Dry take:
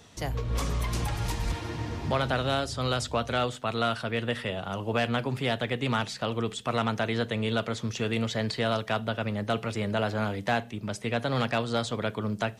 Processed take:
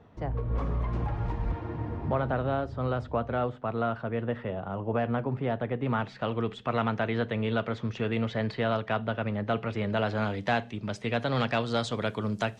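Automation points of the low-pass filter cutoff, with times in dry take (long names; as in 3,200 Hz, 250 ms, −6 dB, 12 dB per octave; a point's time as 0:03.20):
0:05.79 1,200 Hz
0:06.25 2,400 Hz
0:09.66 2,400 Hz
0:10.20 4,800 Hz
0:11.56 4,800 Hz
0:12.07 9,300 Hz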